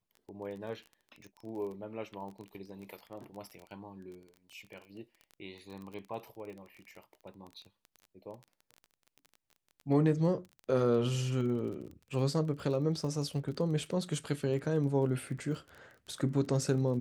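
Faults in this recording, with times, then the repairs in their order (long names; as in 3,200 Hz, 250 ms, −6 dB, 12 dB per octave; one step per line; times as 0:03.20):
surface crackle 22 per second −41 dBFS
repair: click removal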